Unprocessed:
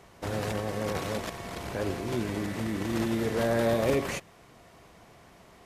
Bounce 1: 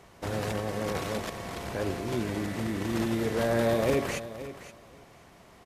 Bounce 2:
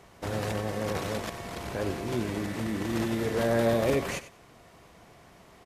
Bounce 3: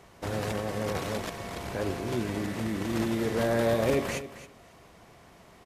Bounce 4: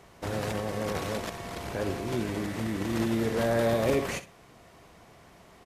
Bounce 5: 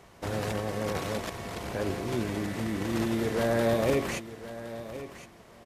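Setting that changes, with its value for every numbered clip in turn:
feedback echo, time: 521, 95, 270, 62, 1065 ms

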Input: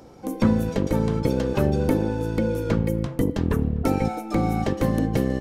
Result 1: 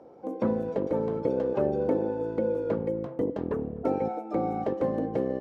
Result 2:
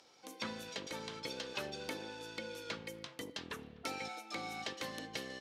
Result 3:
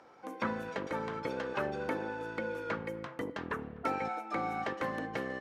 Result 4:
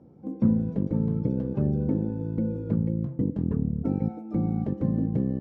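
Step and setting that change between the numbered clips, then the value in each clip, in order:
band-pass, frequency: 540, 3900, 1500, 170 Hz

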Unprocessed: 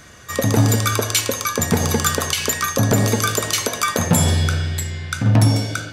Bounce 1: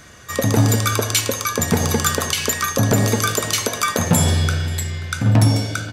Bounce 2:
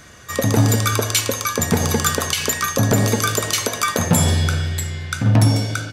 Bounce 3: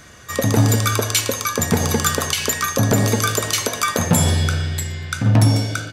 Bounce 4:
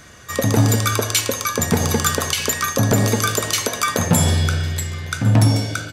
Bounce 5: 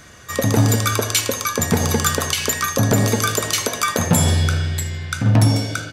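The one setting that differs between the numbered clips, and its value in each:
feedback echo, time: 533, 349, 120, 1103, 80 ms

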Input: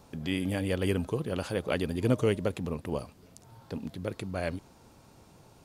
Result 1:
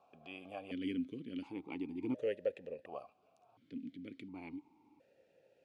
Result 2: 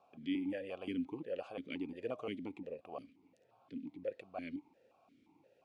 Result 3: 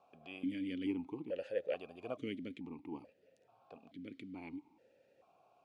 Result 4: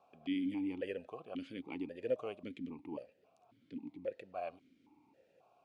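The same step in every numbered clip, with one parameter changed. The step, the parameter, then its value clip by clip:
vowel sequencer, rate: 1.4, 5.7, 2.3, 3.7 Hz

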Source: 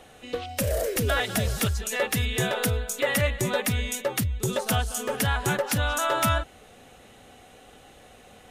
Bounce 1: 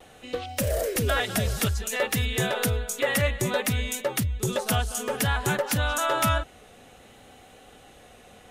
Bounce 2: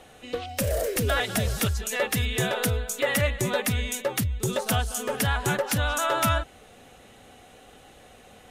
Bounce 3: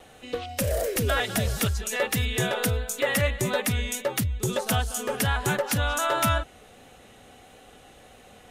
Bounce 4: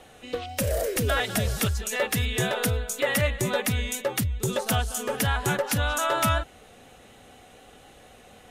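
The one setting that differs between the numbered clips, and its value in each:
vibrato, rate: 0.58, 13, 1.5, 4.1 Hz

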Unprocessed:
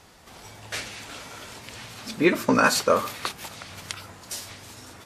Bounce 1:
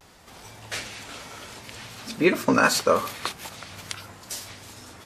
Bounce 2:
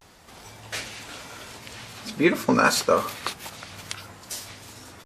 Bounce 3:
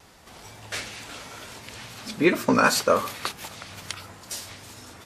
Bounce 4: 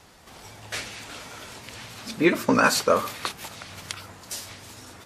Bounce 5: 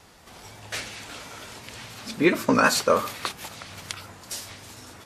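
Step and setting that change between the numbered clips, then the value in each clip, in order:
vibrato, rate: 0.55, 0.3, 2.2, 10, 5.7 Hz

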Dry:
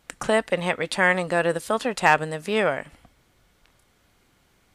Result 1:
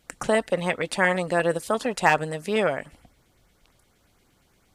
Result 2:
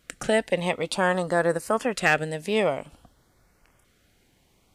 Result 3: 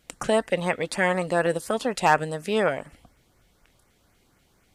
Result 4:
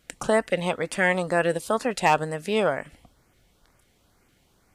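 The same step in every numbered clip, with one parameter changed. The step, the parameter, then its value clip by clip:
LFO notch, rate: 8.6, 0.52, 4.1, 2.1 Hz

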